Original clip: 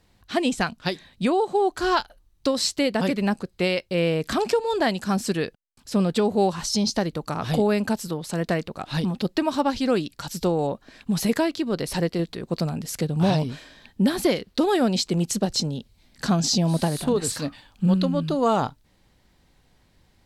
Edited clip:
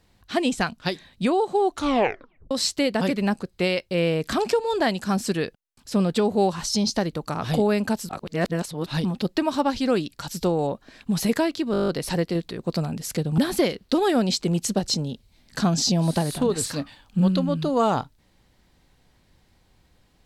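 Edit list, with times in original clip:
1.70 s: tape stop 0.81 s
8.09–8.86 s: reverse
11.72 s: stutter 0.02 s, 9 plays
13.22–14.04 s: delete

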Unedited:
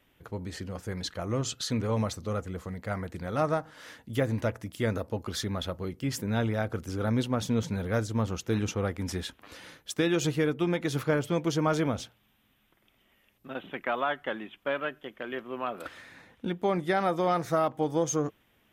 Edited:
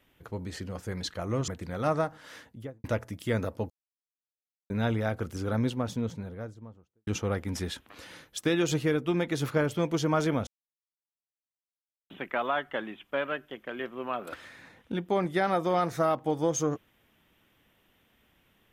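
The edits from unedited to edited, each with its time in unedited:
1.48–3.01 s: delete
3.85–4.37 s: studio fade out
5.23–6.23 s: mute
6.84–8.60 s: studio fade out
12.00–13.63 s: mute

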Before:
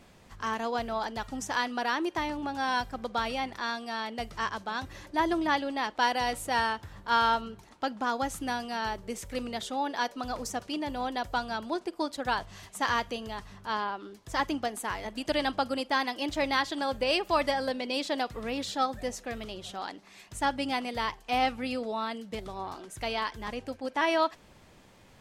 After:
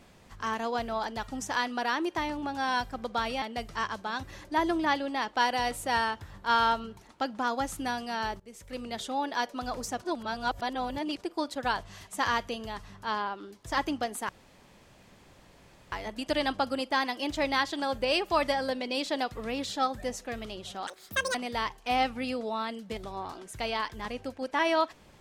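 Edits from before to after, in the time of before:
3.42–4.04 s: delete
9.02–9.66 s: fade in, from -19 dB
10.64–11.83 s: reverse
14.91 s: insert room tone 1.63 s
19.86–20.77 s: speed 191%

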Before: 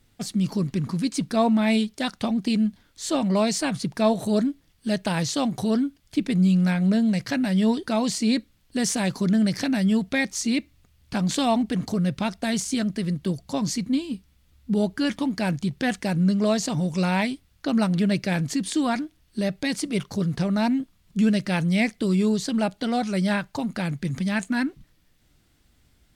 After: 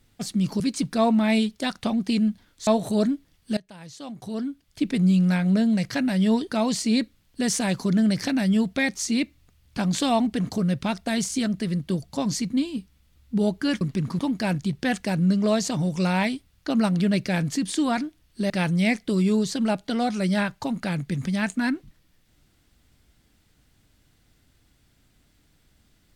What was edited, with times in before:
0.60–0.98 s: move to 15.17 s
3.05–4.03 s: delete
4.93–6.26 s: fade in quadratic, from -21 dB
19.48–21.43 s: delete

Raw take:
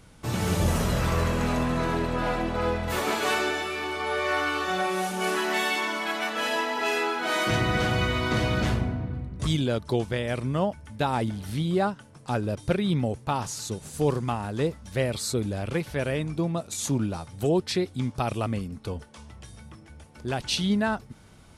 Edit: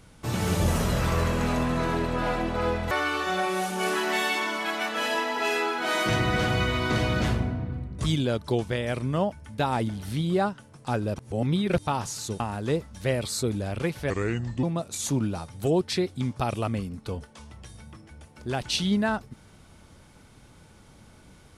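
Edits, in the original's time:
2.91–4.32 s: delete
12.59–13.28 s: reverse
13.81–14.31 s: delete
16.01–16.42 s: speed 77%

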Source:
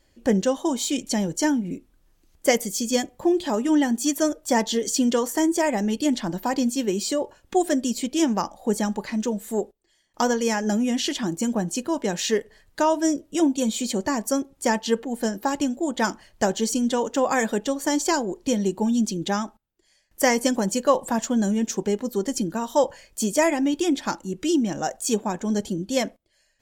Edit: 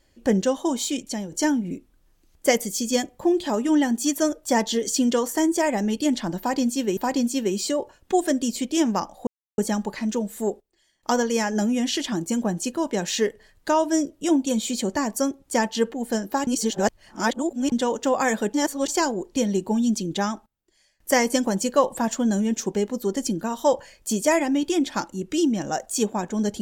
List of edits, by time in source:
0.80–1.32 s: fade out, to -10 dB
6.39–6.97 s: loop, 2 plays
8.69 s: insert silence 0.31 s
15.58–16.83 s: reverse
17.65–17.99 s: reverse

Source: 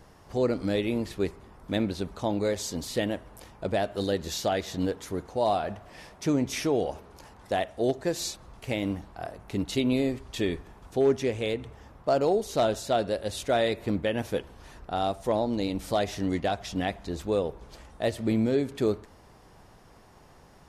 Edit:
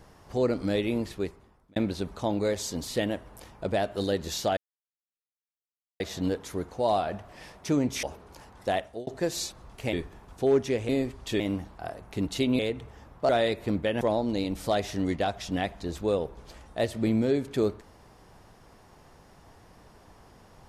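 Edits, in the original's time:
1.00–1.76 s: fade out
4.57 s: insert silence 1.43 s
6.60–6.87 s: delete
7.66–7.91 s: fade out
8.77–9.96 s: swap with 10.47–11.43 s
12.13–13.49 s: delete
14.21–15.25 s: delete

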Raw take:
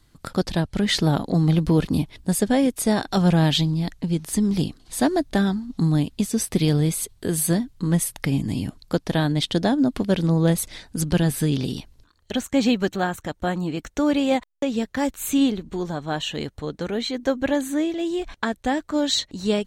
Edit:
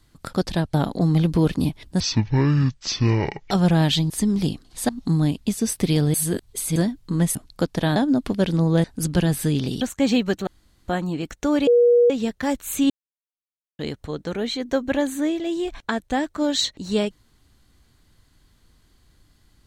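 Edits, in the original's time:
0.74–1.07 s: delete
2.33–3.13 s: speed 53%
3.72–4.25 s: delete
5.04–5.61 s: delete
6.86–7.48 s: reverse
8.07–8.67 s: delete
9.28–9.66 s: delete
10.54–10.81 s: delete
11.78–12.35 s: delete
13.01–13.42 s: room tone
14.21–14.64 s: bleep 480 Hz -11.5 dBFS
15.44–16.33 s: mute

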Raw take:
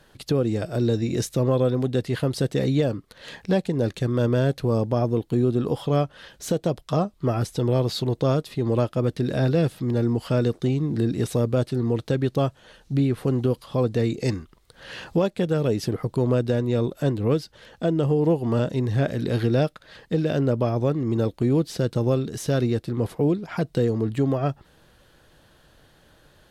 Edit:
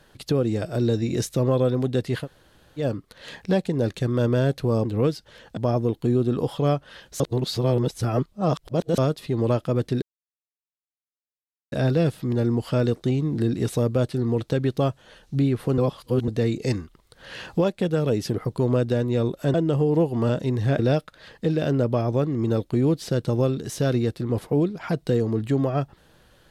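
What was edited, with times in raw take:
2.23–2.81 s: room tone, crossfade 0.10 s
6.48–8.26 s: reverse
9.30 s: insert silence 1.70 s
13.36–13.86 s: reverse
17.12–17.84 s: move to 4.85 s
19.09–19.47 s: delete

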